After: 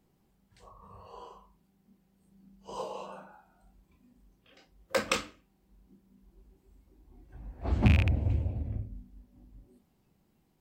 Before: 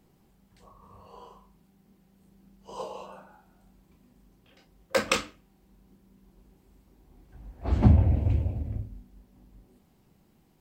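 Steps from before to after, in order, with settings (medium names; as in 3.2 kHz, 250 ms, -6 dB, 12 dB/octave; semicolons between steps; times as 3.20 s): rattle on loud lows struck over -16 dBFS, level -14 dBFS; spectral noise reduction 8 dB; in parallel at +1 dB: compression, threshold -36 dBFS, peak gain reduction 22 dB; on the sum: trim -5.5 dB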